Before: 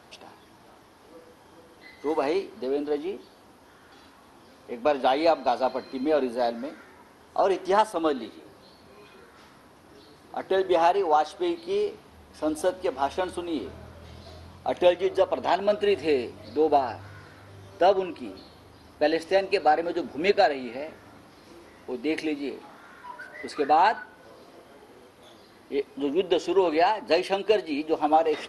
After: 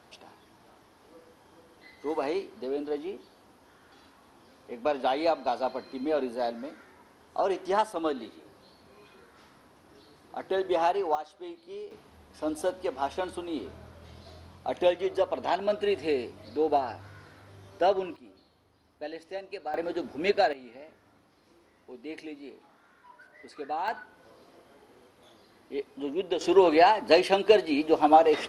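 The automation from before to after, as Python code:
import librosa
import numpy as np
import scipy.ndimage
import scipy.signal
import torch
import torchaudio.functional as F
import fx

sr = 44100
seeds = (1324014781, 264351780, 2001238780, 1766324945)

y = fx.gain(x, sr, db=fx.steps((0.0, -4.5), (11.15, -14.5), (11.91, -4.0), (18.16, -15.0), (19.74, -3.5), (20.53, -12.5), (23.88, -6.0), (26.41, 2.5)))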